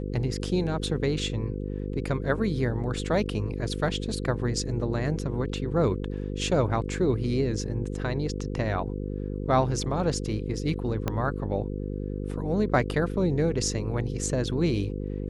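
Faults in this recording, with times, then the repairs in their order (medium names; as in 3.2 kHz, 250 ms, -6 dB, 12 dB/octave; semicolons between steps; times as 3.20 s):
buzz 50 Hz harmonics 10 -32 dBFS
11.08 s: pop -13 dBFS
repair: de-click; de-hum 50 Hz, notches 10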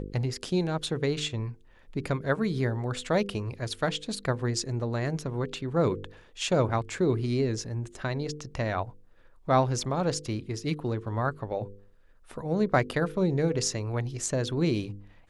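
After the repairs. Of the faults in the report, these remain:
11.08 s: pop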